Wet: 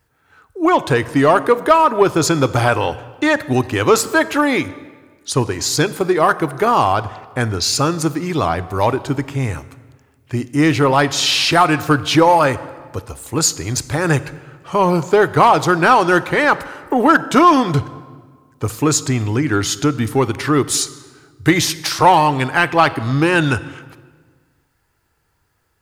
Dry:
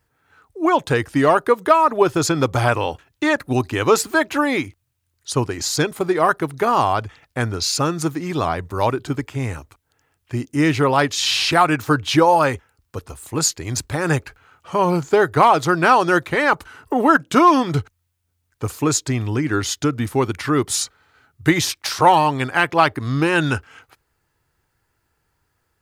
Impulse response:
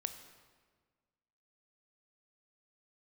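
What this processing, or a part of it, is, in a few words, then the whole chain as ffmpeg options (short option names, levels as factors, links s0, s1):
saturated reverb return: -filter_complex "[0:a]asplit=2[s0][s1];[1:a]atrim=start_sample=2205[s2];[s1][s2]afir=irnorm=-1:irlink=0,asoftclip=type=tanh:threshold=0.224,volume=0.891[s3];[s0][s3]amix=inputs=2:normalize=0,volume=0.891"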